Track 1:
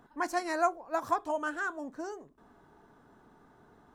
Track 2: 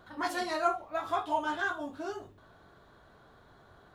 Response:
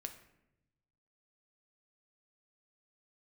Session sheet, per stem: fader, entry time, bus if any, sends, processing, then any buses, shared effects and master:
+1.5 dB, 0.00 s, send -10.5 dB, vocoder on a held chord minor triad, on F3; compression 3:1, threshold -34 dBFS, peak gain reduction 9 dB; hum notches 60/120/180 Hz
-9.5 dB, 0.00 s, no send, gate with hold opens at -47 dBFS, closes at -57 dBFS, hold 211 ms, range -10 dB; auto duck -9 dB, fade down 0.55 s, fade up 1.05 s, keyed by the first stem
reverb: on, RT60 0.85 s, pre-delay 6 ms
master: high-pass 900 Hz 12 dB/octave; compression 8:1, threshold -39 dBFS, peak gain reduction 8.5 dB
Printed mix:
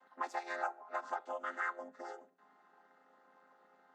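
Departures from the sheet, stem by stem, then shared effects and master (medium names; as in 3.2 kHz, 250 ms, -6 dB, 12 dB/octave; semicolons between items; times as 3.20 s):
stem 2 -9.5 dB -> -20.5 dB; master: missing compression 8:1, threshold -39 dBFS, peak gain reduction 8.5 dB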